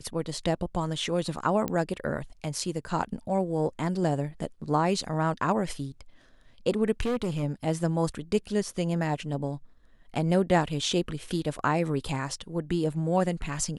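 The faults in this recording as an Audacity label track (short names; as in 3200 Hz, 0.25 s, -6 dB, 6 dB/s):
1.680000	1.680000	pop -14 dBFS
7.000000	7.440000	clipped -24 dBFS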